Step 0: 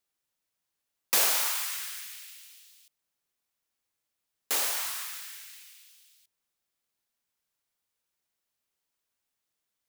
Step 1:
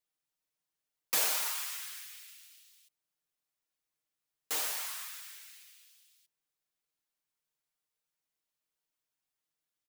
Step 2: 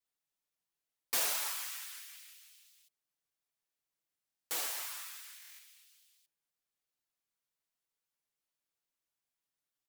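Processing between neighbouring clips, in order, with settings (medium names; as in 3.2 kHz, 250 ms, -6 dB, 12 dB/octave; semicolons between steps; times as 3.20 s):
comb 6.5 ms; trim -7 dB
buffer glitch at 4.27/5.38 s, samples 1024, times 8; vibrato with a chosen wave square 6 Hz, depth 100 cents; trim -2.5 dB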